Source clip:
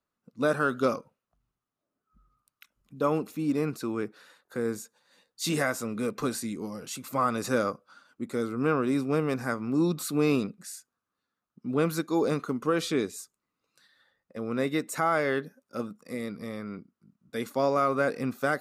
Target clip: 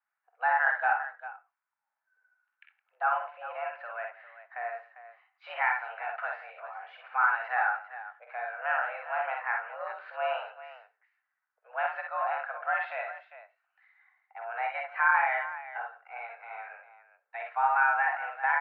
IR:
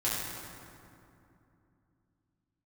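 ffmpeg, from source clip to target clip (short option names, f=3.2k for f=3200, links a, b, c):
-filter_complex "[0:a]asplit=2[a][b];[1:a]atrim=start_sample=2205,atrim=end_sample=4410[c];[b][c]afir=irnorm=-1:irlink=0,volume=-18.5dB[d];[a][d]amix=inputs=2:normalize=0,highpass=f=560:t=q:w=0.5412,highpass=f=560:t=q:w=1.307,lowpass=f=2.2k:t=q:w=0.5176,lowpass=f=2.2k:t=q:w=0.7071,lowpass=f=2.2k:t=q:w=1.932,afreqshift=240,aecho=1:1:48|61|165|399:0.501|0.531|0.119|0.224"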